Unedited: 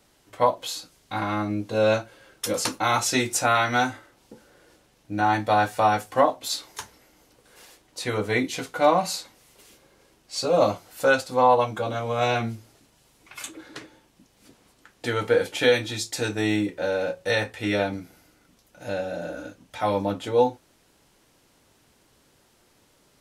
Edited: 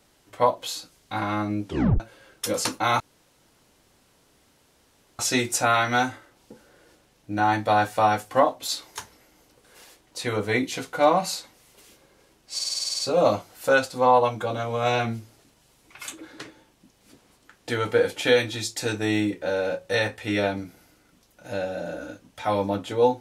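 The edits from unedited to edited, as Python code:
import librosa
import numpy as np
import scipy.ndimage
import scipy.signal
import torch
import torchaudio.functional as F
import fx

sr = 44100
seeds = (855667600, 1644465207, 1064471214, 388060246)

y = fx.edit(x, sr, fx.tape_stop(start_s=1.65, length_s=0.35),
    fx.insert_room_tone(at_s=3.0, length_s=2.19),
    fx.stutter(start_s=10.35, slice_s=0.05, count=10), tone=tone)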